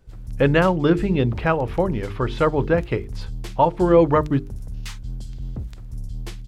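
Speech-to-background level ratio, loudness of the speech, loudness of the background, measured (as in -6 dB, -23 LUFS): 14.5 dB, -20.5 LUFS, -35.0 LUFS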